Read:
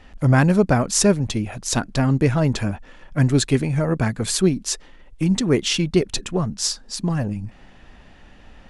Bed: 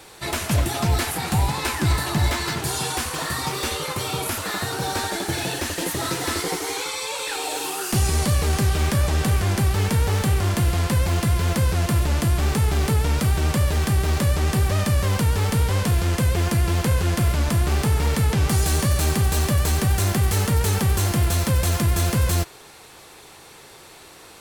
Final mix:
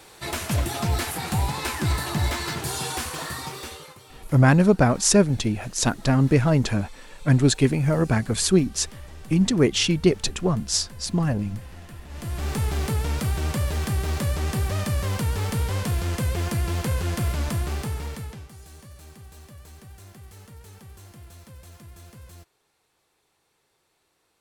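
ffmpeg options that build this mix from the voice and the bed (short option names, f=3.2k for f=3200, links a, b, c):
-filter_complex "[0:a]adelay=4100,volume=-0.5dB[a];[1:a]volume=14dB,afade=t=out:st=3.05:d=0.95:silence=0.112202,afade=t=in:st=12.08:d=0.5:silence=0.133352,afade=t=out:st=17.45:d=1.03:silence=0.0944061[b];[a][b]amix=inputs=2:normalize=0"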